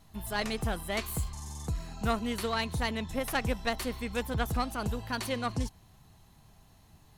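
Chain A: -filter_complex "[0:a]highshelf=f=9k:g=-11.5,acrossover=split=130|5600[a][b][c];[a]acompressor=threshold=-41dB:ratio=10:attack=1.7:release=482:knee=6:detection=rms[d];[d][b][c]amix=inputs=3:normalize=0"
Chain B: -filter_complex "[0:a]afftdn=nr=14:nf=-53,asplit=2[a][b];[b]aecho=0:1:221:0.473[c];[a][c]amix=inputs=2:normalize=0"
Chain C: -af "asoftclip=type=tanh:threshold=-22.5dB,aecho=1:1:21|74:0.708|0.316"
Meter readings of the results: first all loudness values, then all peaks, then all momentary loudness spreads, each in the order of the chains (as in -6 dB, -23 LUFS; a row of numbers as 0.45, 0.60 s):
-34.5, -32.5, -32.5 LUFS; -16.0, -13.0, -18.0 dBFS; 10, 6, 6 LU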